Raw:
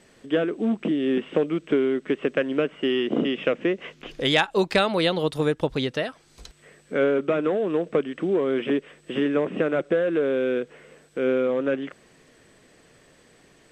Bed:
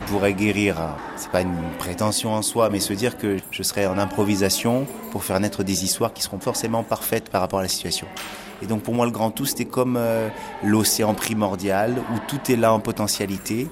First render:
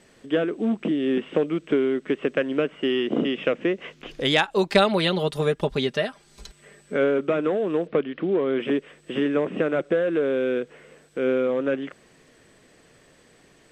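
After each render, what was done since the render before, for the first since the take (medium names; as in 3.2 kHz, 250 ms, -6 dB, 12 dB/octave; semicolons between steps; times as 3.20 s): 4.71–6.96 s: comb 5 ms, depth 61%; 7.87–8.60 s: steep low-pass 4.5 kHz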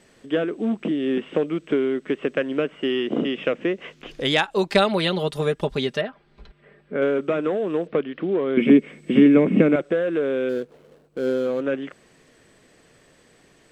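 6.01–7.02 s: distance through air 410 m; 8.57–9.76 s: small resonant body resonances 210/2200 Hz, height 17 dB, ringing for 30 ms; 10.49–11.61 s: median filter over 25 samples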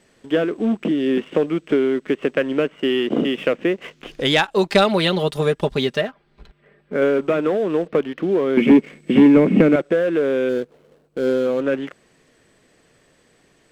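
waveshaping leveller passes 1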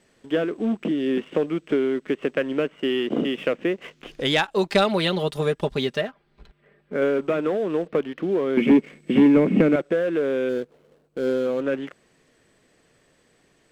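trim -4 dB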